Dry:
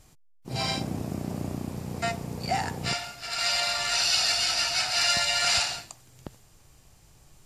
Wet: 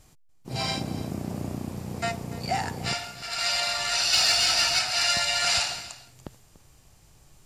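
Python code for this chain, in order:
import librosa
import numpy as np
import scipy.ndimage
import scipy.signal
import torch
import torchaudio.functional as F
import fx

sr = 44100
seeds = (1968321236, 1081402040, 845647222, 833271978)

y = fx.leveller(x, sr, passes=1, at=(4.13, 4.79))
y = y + 10.0 ** (-17.5 / 20.0) * np.pad(y, (int(291 * sr / 1000.0), 0))[:len(y)]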